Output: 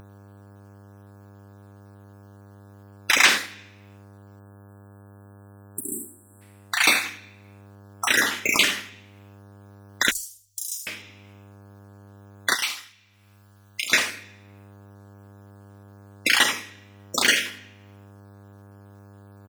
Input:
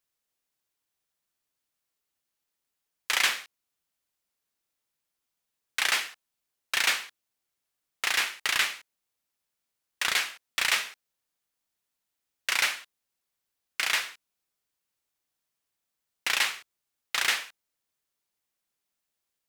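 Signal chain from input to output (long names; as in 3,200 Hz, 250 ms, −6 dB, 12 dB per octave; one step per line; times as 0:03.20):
time-frequency cells dropped at random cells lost 46%
parametric band 260 Hz +14.5 dB 1.2 octaves
ambience of single reflections 50 ms −10 dB, 79 ms −11 dB
on a send at −13 dB: convolution reverb RT60 0.60 s, pre-delay 32 ms
0:04.40–0:06.42: on the sum: time-frequency box erased 420–7,500 Hz
hum with harmonics 100 Hz, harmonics 17, −63 dBFS −6 dB per octave
0:05.81–0:06.81: tuned comb filter 170 Hz, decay 1.6 s, mix 50%
0:12.55–0:13.92: guitar amp tone stack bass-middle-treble 5-5-5
in parallel at −3 dB: downward compressor, threshold −39 dBFS, peak gain reduction 18 dB
0:10.11–0:10.87: on the sum: inverse Chebyshev band-stop filter 240–2,000 Hz, stop band 70 dB
upward compression, threshold −50 dBFS
level +7.5 dB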